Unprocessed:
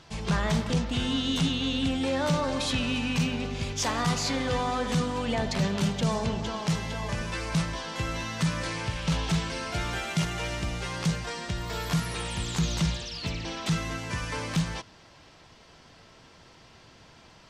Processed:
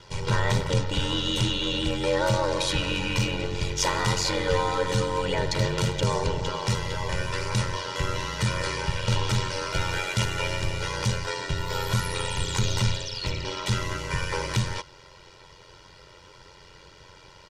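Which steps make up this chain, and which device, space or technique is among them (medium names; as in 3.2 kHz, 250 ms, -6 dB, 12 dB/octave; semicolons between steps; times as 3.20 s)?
ring-modulated robot voice (ring modulator 45 Hz; comb 2.1 ms, depth 85%); trim +4 dB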